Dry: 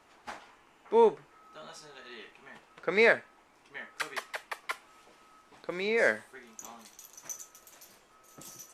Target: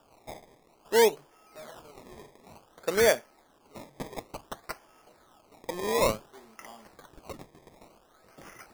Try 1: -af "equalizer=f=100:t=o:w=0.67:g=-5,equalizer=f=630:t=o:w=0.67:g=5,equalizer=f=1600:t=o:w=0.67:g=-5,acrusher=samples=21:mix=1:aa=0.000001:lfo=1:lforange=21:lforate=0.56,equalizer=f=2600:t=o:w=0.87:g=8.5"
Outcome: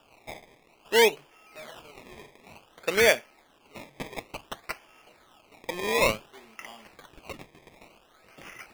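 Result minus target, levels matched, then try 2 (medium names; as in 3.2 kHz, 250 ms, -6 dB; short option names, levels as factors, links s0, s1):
2 kHz band +5.0 dB
-af "equalizer=f=100:t=o:w=0.67:g=-5,equalizer=f=630:t=o:w=0.67:g=5,equalizer=f=1600:t=o:w=0.67:g=-5,acrusher=samples=21:mix=1:aa=0.000001:lfo=1:lforange=21:lforate=0.56,equalizer=f=2600:t=o:w=0.87:g=-3"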